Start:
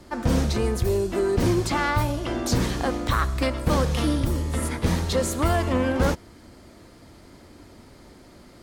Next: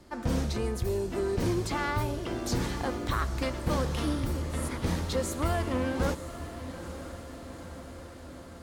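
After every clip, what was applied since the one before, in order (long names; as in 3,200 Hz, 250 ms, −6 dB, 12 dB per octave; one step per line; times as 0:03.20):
feedback delay with all-pass diffusion 918 ms, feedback 66%, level −12 dB
level −7 dB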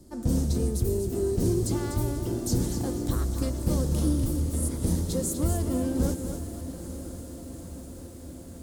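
drawn EQ curve 310 Hz 0 dB, 1,100 Hz −15 dB, 2,300 Hz −18 dB, 8,400 Hz +4 dB
feedback echo at a low word length 247 ms, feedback 35%, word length 9 bits, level −7.5 dB
level +4 dB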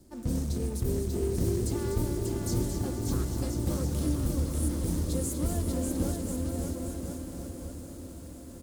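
in parallel at −8 dB: log-companded quantiser 4 bits
on the sum: bouncing-ball delay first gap 590 ms, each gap 0.75×, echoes 5
level −8 dB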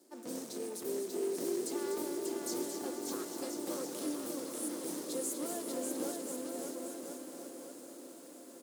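high-pass filter 310 Hz 24 dB per octave
level −2 dB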